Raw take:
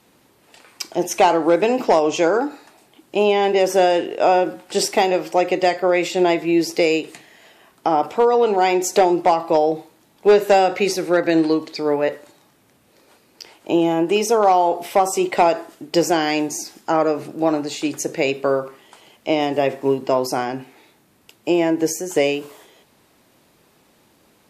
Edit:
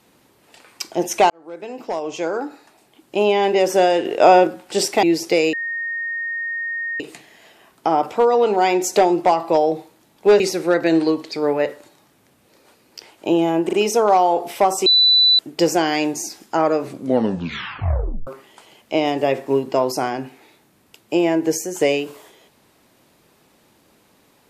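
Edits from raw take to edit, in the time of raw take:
1.3–3.35 fade in
4.05–4.47 gain +4.5 dB
5.03–6.5 cut
7 add tone 1850 Hz -22.5 dBFS 1.47 s
10.4–10.83 cut
14.08 stutter 0.04 s, 3 plays
15.21–15.74 bleep 3980 Hz -10 dBFS
17.18 tape stop 1.44 s

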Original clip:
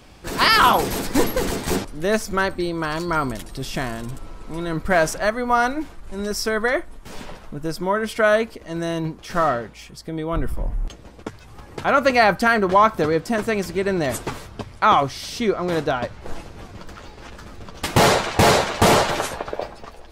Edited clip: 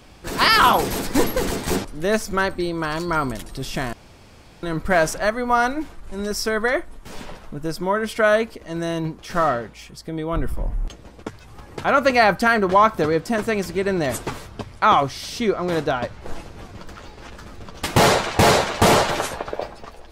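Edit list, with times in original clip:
3.93–4.63 room tone

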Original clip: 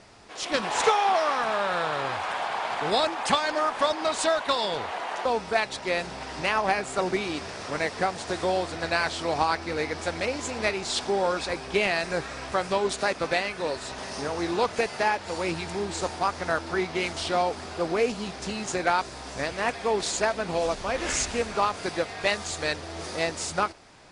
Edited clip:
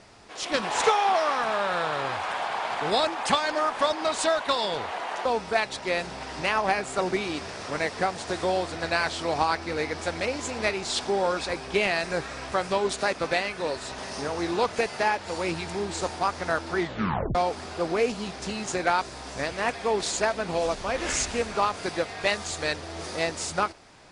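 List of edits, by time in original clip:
16.79 tape stop 0.56 s

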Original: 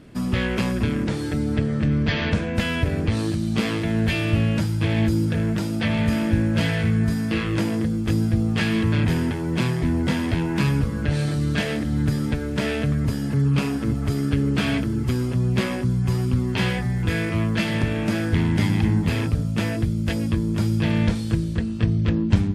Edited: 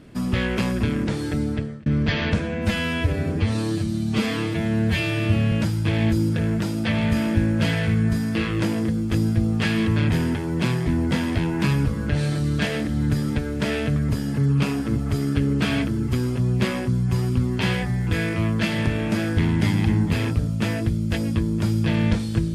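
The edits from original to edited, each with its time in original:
1.43–1.86 fade out linear
2.4–4.48 stretch 1.5×

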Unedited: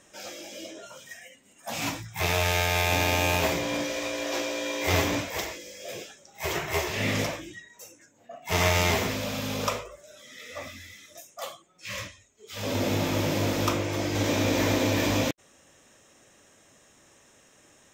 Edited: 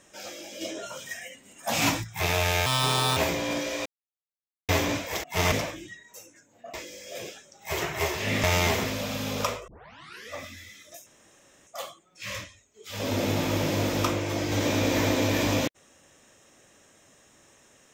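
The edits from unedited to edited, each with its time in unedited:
0.61–2.04 gain +6.5 dB
2.66–3.4 speed 146%
4.09–4.92 mute
5.47–7.17 swap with 8.39–8.67
9.91 tape start 0.63 s
11.3 insert room tone 0.60 s

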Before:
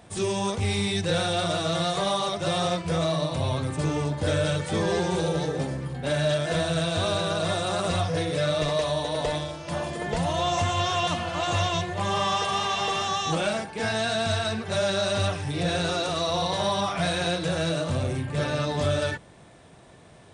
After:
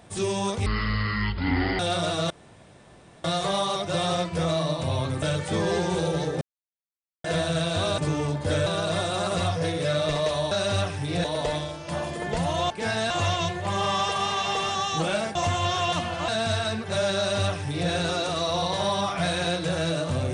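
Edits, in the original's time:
0.66–1.26 speed 53%
1.77 insert room tone 0.94 s
3.75–4.43 move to 7.19
5.62–6.45 mute
10.5–11.43 swap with 13.68–14.08
14.97–15.7 copy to 9.04

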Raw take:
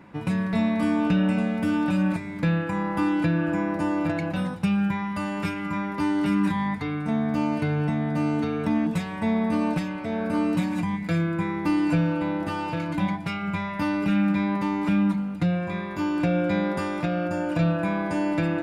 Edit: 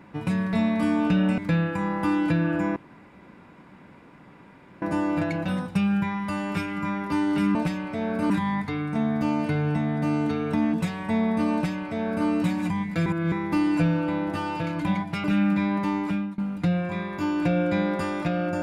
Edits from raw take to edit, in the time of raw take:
1.38–2.32 cut
3.7 insert room tone 2.06 s
9.66–10.41 copy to 6.43
11.19–11.45 reverse
13.37–14.02 cut
14.75–15.16 fade out, to -23.5 dB

